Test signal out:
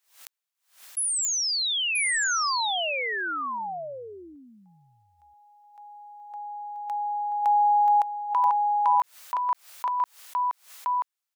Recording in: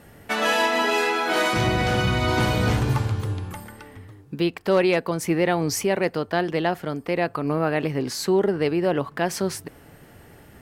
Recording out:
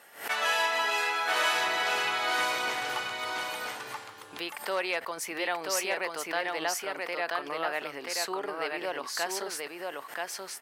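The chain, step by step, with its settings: in parallel at -1.5 dB: compressor, threshold -34 dBFS; on the sum: HPF 810 Hz 12 dB/oct; echo 0.982 s -3 dB; backwards sustainer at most 140 dB/s; gain -5.5 dB

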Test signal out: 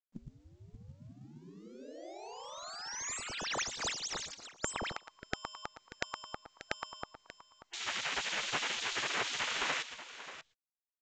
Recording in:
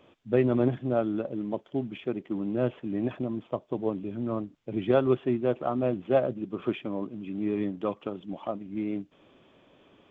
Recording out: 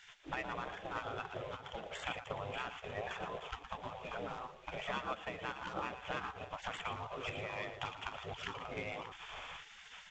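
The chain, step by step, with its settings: median filter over 9 samples; in parallel at -1.5 dB: vocal rider within 5 dB 0.5 s; on the sum: speakerphone echo 0.11 s, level -22 dB; compressor 8:1, threshold -32 dBFS; on a send: tapped delay 0.116/0.586 s -11.5/-13.5 dB; on the sum: spectral gate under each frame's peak -20 dB weak; gain +12 dB; µ-law 128 kbps 16000 Hz

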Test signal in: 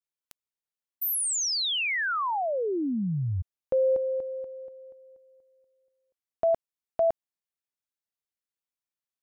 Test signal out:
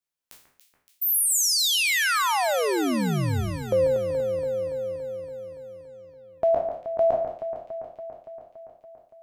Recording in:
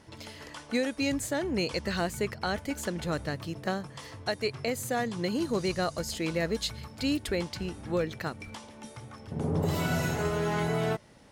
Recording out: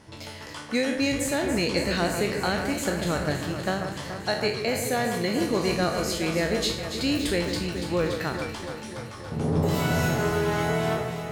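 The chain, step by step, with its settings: spectral trails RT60 0.48 s; echo with dull and thin repeats by turns 0.142 s, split 2200 Hz, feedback 83%, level -7 dB; gain +2.5 dB

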